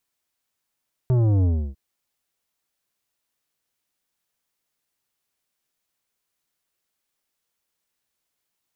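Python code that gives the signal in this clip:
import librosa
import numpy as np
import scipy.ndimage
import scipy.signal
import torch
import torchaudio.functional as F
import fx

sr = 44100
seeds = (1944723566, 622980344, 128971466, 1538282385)

y = fx.sub_drop(sr, level_db=-17.0, start_hz=130.0, length_s=0.65, drive_db=11.0, fade_s=0.31, end_hz=65.0)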